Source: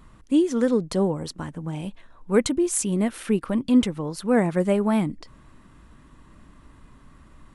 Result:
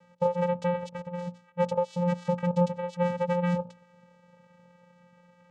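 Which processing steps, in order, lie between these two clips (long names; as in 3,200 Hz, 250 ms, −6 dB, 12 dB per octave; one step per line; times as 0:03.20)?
gliding playback speed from 150% → 124%
low shelf with overshoot 280 Hz −13 dB, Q 1.5
downward compressor 5 to 1, threshold −21 dBFS, peak gain reduction 8.5 dB
mains-hum notches 60/120/180/240/300/360/420 Hz
channel vocoder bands 4, square 176 Hz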